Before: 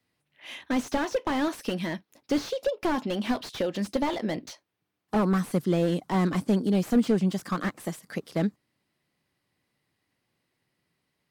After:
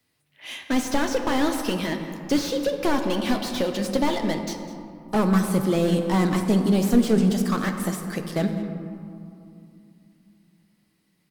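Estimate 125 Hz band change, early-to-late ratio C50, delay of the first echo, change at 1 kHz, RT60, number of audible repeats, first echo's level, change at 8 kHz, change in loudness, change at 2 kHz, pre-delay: +4.5 dB, 6.5 dB, 0.202 s, +4.0 dB, 2.6 s, 1, -16.5 dB, +8.5 dB, +4.0 dB, +4.5 dB, 3 ms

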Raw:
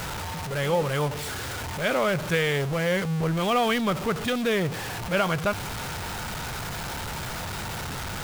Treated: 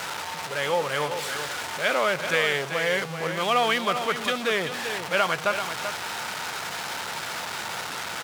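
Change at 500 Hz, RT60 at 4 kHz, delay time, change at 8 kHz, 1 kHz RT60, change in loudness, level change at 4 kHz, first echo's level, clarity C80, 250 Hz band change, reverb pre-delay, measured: -0.5 dB, none, 0.387 s, +1.5 dB, none, +1.0 dB, +3.5 dB, -8.5 dB, none, -7.5 dB, none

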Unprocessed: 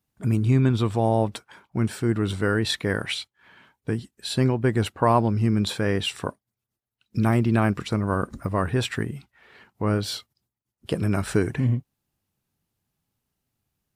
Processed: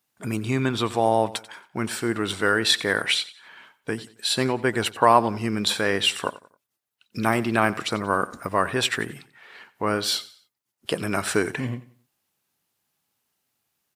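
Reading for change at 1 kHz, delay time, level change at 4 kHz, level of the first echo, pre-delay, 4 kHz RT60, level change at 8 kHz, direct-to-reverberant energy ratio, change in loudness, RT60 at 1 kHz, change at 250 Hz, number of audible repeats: +5.0 dB, 90 ms, +7.0 dB, -18.0 dB, none, none, +7.0 dB, none, +0.5 dB, none, -3.0 dB, 2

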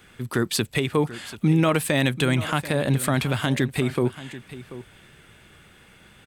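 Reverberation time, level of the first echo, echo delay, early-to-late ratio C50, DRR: none, -15.5 dB, 0.736 s, none, none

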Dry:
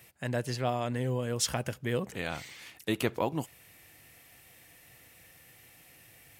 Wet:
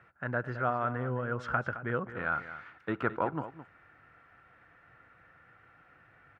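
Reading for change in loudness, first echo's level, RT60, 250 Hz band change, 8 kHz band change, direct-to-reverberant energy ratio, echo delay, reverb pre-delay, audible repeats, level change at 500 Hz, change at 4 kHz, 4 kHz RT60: -1.0 dB, -13.0 dB, none, -3.0 dB, under -30 dB, none, 0.215 s, none, 1, -2.0 dB, -19.0 dB, none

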